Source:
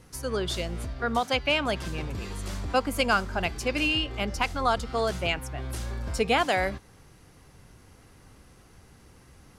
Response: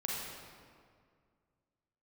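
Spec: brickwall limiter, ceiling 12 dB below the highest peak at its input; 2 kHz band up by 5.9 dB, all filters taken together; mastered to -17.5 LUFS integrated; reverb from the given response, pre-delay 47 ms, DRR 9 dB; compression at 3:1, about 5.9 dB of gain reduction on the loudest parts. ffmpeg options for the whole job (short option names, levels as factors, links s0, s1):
-filter_complex "[0:a]equalizer=f=2000:t=o:g=8,acompressor=threshold=0.0631:ratio=3,alimiter=limit=0.0794:level=0:latency=1,asplit=2[s0][s1];[1:a]atrim=start_sample=2205,adelay=47[s2];[s1][s2]afir=irnorm=-1:irlink=0,volume=0.237[s3];[s0][s3]amix=inputs=2:normalize=0,volume=5.31"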